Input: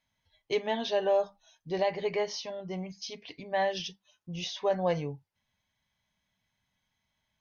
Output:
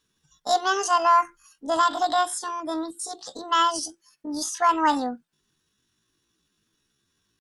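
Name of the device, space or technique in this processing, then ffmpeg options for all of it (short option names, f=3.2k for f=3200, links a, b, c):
chipmunk voice: -af "asetrate=76340,aresample=44100,atempo=0.577676,volume=7.5dB"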